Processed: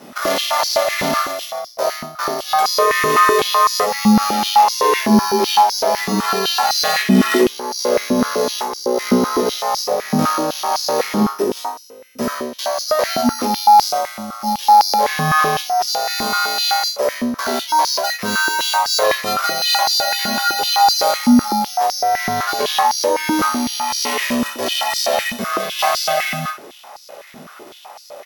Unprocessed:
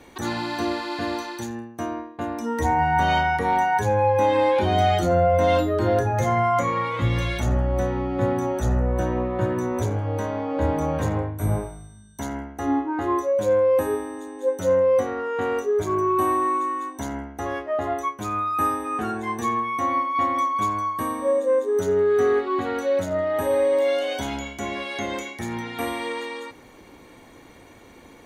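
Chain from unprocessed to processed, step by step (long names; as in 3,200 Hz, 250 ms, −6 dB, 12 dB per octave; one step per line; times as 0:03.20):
samples sorted by size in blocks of 8 samples
dynamic equaliser 2,700 Hz, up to +4 dB, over −35 dBFS, Q 0.77
in parallel at +0.5 dB: compressor whose output falls as the input rises −25 dBFS, ratio −0.5
on the sum: double-tracking delay 15 ms −5.5 dB
ring modulation 310 Hz
ambience of single reflections 20 ms −7 dB, 32 ms −9 dB, 62 ms −8.5 dB
high-pass on a step sequencer 7.9 Hz 220–4,900 Hz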